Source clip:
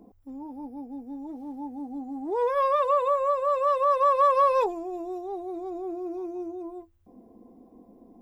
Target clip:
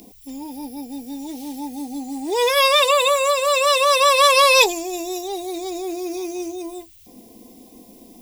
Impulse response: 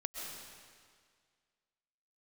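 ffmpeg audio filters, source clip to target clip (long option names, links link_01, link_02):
-af "aexciter=amount=12.9:drive=7.1:freq=2100,volume=6dB"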